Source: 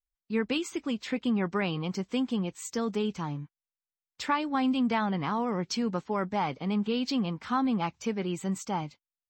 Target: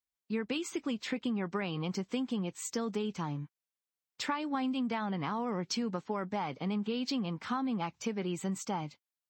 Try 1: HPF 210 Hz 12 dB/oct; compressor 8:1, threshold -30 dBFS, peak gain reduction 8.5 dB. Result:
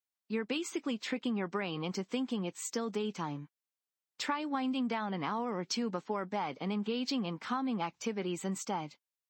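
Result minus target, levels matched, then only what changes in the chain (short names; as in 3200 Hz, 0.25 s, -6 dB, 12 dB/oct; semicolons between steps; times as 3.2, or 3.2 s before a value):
125 Hz band -3.0 dB
change: HPF 96 Hz 12 dB/oct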